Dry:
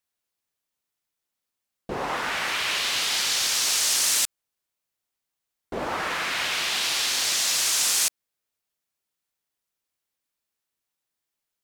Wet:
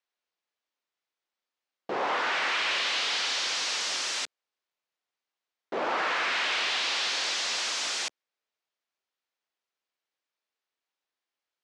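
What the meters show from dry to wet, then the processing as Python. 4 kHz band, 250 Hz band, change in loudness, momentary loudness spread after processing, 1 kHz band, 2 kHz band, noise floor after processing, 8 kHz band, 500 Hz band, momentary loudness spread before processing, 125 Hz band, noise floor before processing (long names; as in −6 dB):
−4.0 dB, −4.0 dB, −5.0 dB, 7 LU, 0.0 dB, −1.0 dB, below −85 dBFS, −12.0 dB, 0.0 dB, 10 LU, below −10 dB, −85 dBFS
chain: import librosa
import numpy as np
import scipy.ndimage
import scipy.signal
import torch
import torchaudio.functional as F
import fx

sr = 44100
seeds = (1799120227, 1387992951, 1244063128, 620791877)

p1 = fx.tube_stage(x, sr, drive_db=27.0, bias=0.35)
p2 = fx.quant_dither(p1, sr, seeds[0], bits=8, dither='none')
p3 = p1 + (p2 * librosa.db_to_amplitude(-6.5))
p4 = fx.bandpass_edges(p3, sr, low_hz=360.0, high_hz=6500.0)
p5 = fx.air_absorb(p4, sr, metres=81.0)
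y = p5 * librosa.db_to_amplitude(1.5)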